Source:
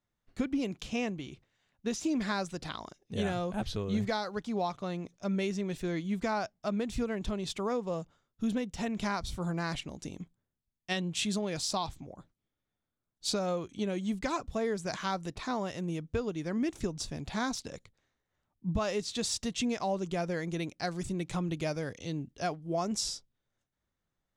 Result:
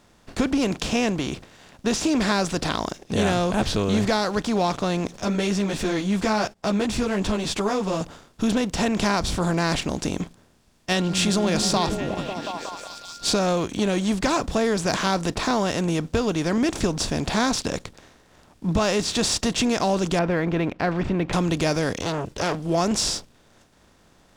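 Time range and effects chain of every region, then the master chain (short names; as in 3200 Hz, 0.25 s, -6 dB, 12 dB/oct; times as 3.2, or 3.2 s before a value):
5.14–8.01 gate -56 dBFS, range -29 dB + upward compressor, threshold -35 dBFS + ensemble effect
10.98–13.44 whine 1400 Hz -57 dBFS + delay with a stepping band-pass 0.182 s, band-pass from 180 Hz, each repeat 0.7 oct, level -4.5 dB
20.19–21.33 LPF 2300 Hz 24 dB/oct + mismatched tape noise reduction encoder only
22.01–22.55 comb 2 ms, depth 83% + core saturation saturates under 1900 Hz
whole clip: per-bin compression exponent 0.6; sample leveller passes 1; gain +3.5 dB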